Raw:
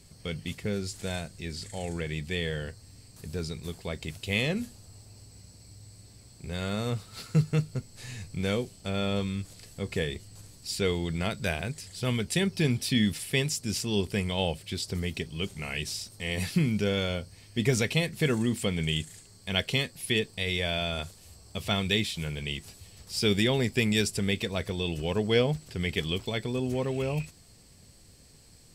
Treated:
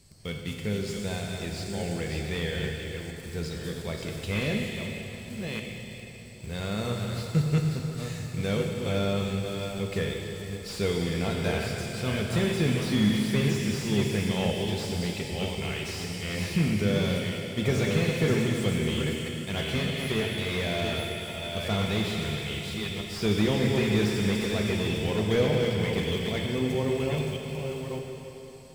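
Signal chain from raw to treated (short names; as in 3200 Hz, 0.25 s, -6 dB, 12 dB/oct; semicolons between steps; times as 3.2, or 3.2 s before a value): reverse delay 0.622 s, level -6 dB; in parallel at -9 dB: bit-crush 7-bit; on the sum: plate-style reverb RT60 3.9 s, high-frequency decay 0.9×, DRR 1.5 dB; slew limiter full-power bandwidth 110 Hz; gain -3.5 dB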